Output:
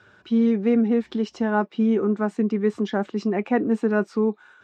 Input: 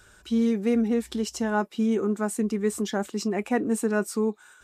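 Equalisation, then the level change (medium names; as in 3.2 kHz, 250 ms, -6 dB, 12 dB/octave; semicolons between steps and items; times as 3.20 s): high-pass 100 Hz 24 dB/octave; distance through air 210 m; treble shelf 7.7 kHz -7.5 dB; +4.0 dB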